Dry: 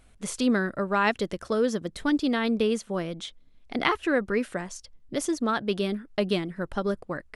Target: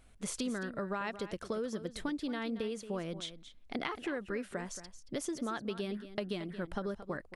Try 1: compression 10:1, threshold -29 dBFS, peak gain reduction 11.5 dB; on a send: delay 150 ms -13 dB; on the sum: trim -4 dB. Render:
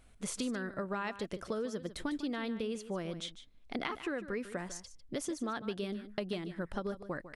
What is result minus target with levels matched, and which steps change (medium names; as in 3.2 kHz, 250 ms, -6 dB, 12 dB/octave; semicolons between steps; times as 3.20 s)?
echo 76 ms early
change: delay 226 ms -13 dB